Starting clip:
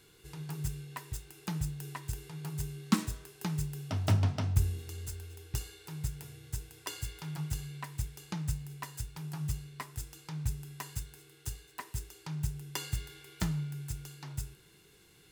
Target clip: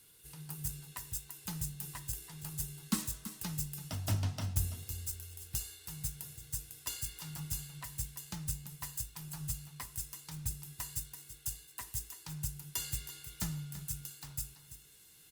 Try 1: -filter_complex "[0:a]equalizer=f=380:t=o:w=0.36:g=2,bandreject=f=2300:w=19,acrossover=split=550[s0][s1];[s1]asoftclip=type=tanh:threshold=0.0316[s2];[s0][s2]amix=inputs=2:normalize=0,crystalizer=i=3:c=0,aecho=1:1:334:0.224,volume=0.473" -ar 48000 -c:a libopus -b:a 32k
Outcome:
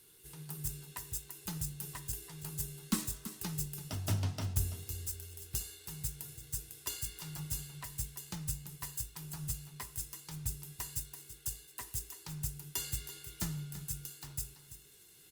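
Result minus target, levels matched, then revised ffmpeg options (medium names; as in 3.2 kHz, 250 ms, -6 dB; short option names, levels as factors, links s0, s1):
500 Hz band +3.0 dB
-filter_complex "[0:a]equalizer=f=380:t=o:w=0.36:g=-8,bandreject=f=2300:w=19,acrossover=split=550[s0][s1];[s1]asoftclip=type=tanh:threshold=0.0316[s2];[s0][s2]amix=inputs=2:normalize=0,crystalizer=i=3:c=0,aecho=1:1:334:0.224,volume=0.473" -ar 48000 -c:a libopus -b:a 32k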